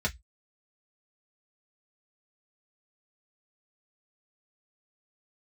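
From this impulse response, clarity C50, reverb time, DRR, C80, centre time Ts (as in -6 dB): 23.5 dB, 0.10 s, -2.0 dB, 37.0 dB, 7 ms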